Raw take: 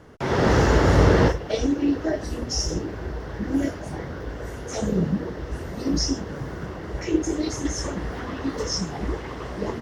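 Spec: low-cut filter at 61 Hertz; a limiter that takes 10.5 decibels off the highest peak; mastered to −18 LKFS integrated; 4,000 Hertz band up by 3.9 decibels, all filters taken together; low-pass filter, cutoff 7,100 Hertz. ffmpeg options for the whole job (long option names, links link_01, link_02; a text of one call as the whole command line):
ffmpeg -i in.wav -af "highpass=61,lowpass=7100,equalizer=frequency=4000:width_type=o:gain=7,volume=9.5dB,alimiter=limit=-6dB:level=0:latency=1" out.wav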